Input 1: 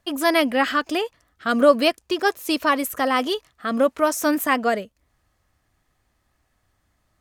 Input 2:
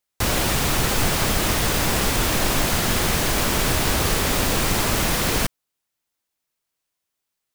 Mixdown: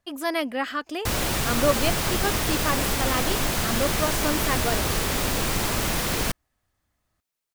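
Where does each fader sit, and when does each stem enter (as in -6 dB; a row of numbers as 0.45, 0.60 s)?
-7.5, -4.0 dB; 0.00, 0.85 s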